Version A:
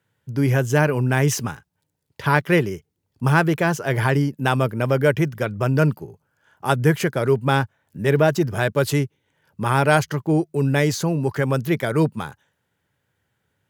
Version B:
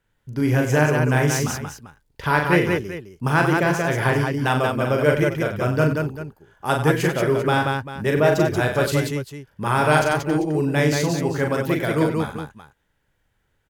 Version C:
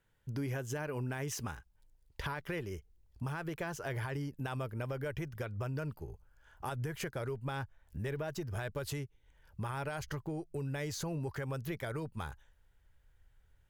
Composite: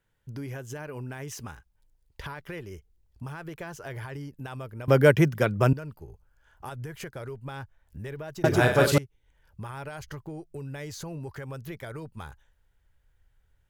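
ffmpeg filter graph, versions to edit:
ffmpeg -i take0.wav -i take1.wav -i take2.wav -filter_complex "[2:a]asplit=3[link_01][link_02][link_03];[link_01]atrim=end=4.882[link_04];[0:a]atrim=start=4.878:end=5.732[link_05];[link_02]atrim=start=5.728:end=8.442[link_06];[1:a]atrim=start=8.438:end=8.982[link_07];[link_03]atrim=start=8.978[link_08];[link_04][link_05]acrossfade=duration=0.004:curve1=hsin:curve2=hsin[link_09];[link_09][link_06]acrossfade=duration=0.004:curve1=hsin:curve2=hsin[link_10];[link_10][link_07]acrossfade=duration=0.004:curve1=hsin:curve2=hsin[link_11];[link_11][link_08]acrossfade=duration=0.004:curve1=hsin:curve2=hsin" out.wav

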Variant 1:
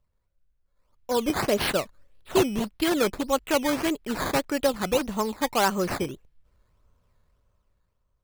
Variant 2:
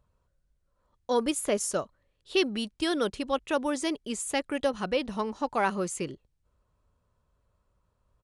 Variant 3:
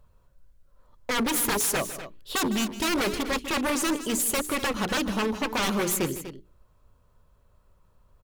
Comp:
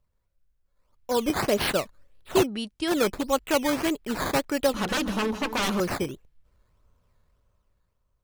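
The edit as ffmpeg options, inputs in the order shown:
ffmpeg -i take0.wav -i take1.wav -i take2.wav -filter_complex "[0:a]asplit=3[link_01][link_02][link_03];[link_01]atrim=end=2.47[link_04];[1:a]atrim=start=2.43:end=2.91[link_05];[link_02]atrim=start=2.87:end=4.732[link_06];[2:a]atrim=start=4.728:end=5.802[link_07];[link_03]atrim=start=5.798[link_08];[link_04][link_05]acrossfade=duration=0.04:curve1=tri:curve2=tri[link_09];[link_09][link_06]acrossfade=duration=0.04:curve1=tri:curve2=tri[link_10];[link_10][link_07]acrossfade=duration=0.004:curve1=hsin:curve2=hsin[link_11];[link_11][link_08]acrossfade=duration=0.004:curve1=hsin:curve2=hsin" out.wav

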